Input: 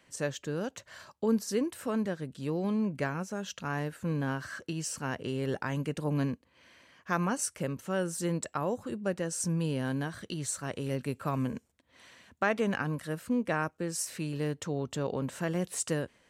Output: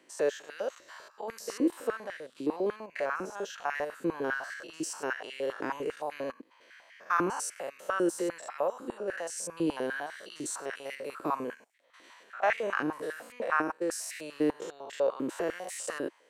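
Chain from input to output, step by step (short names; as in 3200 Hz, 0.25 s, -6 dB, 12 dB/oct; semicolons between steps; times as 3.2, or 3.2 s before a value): stepped spectrum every 0.1 s; stepped high-pass 10 Hz 330–2000 Hz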